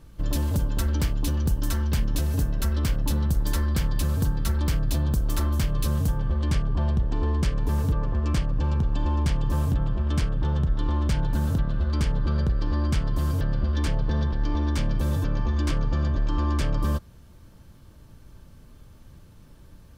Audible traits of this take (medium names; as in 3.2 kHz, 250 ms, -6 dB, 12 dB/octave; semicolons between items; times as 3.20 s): noise floor -50 dBFS; spectral tilt -6.5 dB/octave